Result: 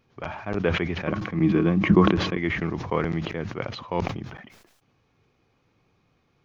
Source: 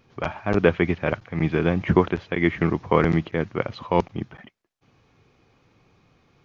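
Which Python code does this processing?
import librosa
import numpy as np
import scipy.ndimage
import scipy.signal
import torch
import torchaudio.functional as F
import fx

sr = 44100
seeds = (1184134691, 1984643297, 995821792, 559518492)

y = fx.small_body(x, sr, hz=(200.0, 310.0, 1100.0), ring_ms=75, db=14, at=(1.07, 2.37))
y = fx.sustainer(y, sr, db_per_s=55.0)
y = F.gain(torch.from_numpy(y), -7.0).numpy()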